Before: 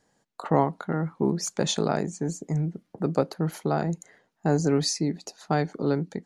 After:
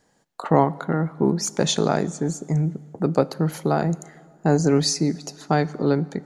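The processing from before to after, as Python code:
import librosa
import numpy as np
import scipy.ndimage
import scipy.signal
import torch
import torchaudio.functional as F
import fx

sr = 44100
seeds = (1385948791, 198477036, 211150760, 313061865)

y = fx.rev_plate(x, sr, seeds[0], rt60_s=2.1, hf_ratio=0.75, predelay_ms=0, drr_db=19.0)
y = F.gain(torch.from_numpy(y), 4.5).numpy()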